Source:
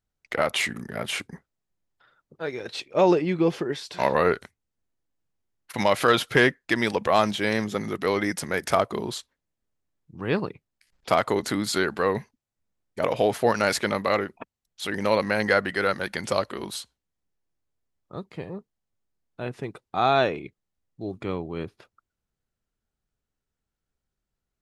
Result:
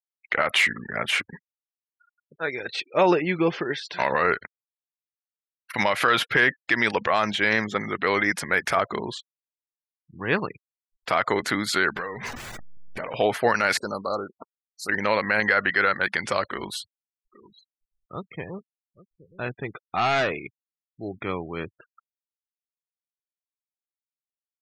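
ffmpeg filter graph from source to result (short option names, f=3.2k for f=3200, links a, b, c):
-filter_complex "[0:a]asettb=1/sr,asplit=3[a][b][c];[a]atrim=end=9.054[d];[b]atrim=start=9.05:end=10.33,asetpts=PTS-STARTPTS,afade=t=in:d=0.004:c=qsin,afade=t=out:st=1.276:d=0.004:c=qsin,highshelf=f=4.1k:g=-7,bandreject=f=1.3k:w=9[e];[c]atrim=start=10.326[f];[d][e]acrossfade=d=0.004:c1=hsin:c2=qsin[g];[g][f]acrossfade=d=0.004:c1=qsin:c2=hsin,asettb=1/sr,asplit=3[h][i][j];[h]atrim=end=11.964[k];[i]atrim=start=11.96:end=13.14,asetpts=PTS-STARTPTS,afade=t=in:d=0.004:c=qsin,afade=t=out:st=1.176:d=0.004:c=qsin,aeval=exprs='val(0)+0.5*0.0316*sgn(val(0))':c=same,acompressor=threshold=-31dB:ratio=8:attack=3.2:release=140:knee=1:detection=peak,asplit=2[l][m];[m]adelay=17,volume=-11dB[n];[l][n]amix=inputs=2:normalize=0,atrim=end_sample=52038[o];[j]atrim=start=13.136[p];[k][o]acrossfade=d=0.004:c1=hsin:c2=qsin[q];[q][p]acrossfade=d=0.004:c1=qsin:c2=hsin,asettb=1/sr,asplit=3[r][s][t];[r]atrim=end=13.774[u];[s]atrim=start=13.77:end=14.89,asetpts=PTS-STARTPTS,afade=t=in:d=0.004:c=qsin,afade=t=out:st=1.116:d=0.004:c=qsin,equalizer=f=1.2k:w=0.54:g=-12.5,asplit=2[v][w];[w]highpass=f=720:p=1,volume=11dB,asoftclip=type=tanh:threshold=-15.5dB[x];[v][x]amix=inputs=2:normalize=0,lowpass=f=7.9k:p=1,volume=-6dB,asuperstop=centerf=2500:order=12:qfactor=0.85[y];[t]atrim=start=14.886[z];[u][y]acrossfade=d=0.004:c1=hsin:c2=qsin[aa];[aa][z]acrossfade=d=0.004:c1=qsin:c2=hsin,asettb=1/sr,asplit=3[ab][ac][ad];[ab]atrim=end=16.444[ae];[ac]atrim=start=16.44:end=20.32,asetpts=PTS-STARTPTS,afade=t=in:d=0.004:c=qsin,afade=t=out:st=3.876:d=0.004:c=qsin,lowshelf=f=70:g=9,volume=22dB,asoftclip=hard,volume=-22dB,aecho=1:1:822:0.133,atrim=end_sample=171108[af];[ad]atrim=start=20.316[ag];[ae][af]acrossfade=d=0.004:c1=hsin:c2=qsin[ah];[ah][ag]acrossfade=d=0.004:c1=qsin:c2=hsin,afftfilt=real='re*gte(hypot(re,im),0.00794)':imag='im*gte(hypot(re,im),0.00794)':win_size=1024:overlap=0.75,equalizer=f=1.8k:t=o:w=1.9:g=11,alimiter=level_in=5.5dB:limit=-1dB:release=50:level=0:latency=1,volume=-7.5dB"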